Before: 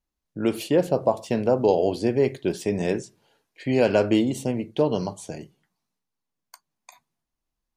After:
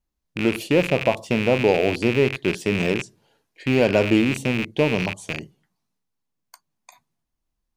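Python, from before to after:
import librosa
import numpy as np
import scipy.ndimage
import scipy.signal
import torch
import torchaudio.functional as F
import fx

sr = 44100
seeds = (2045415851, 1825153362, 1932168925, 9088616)

y = fx.rattle_buzz(x, sr, strikes_db=-37.0, level_db=-15.0)
y = fx.low_shelf(y, sr, hz=250.0, db=5.5)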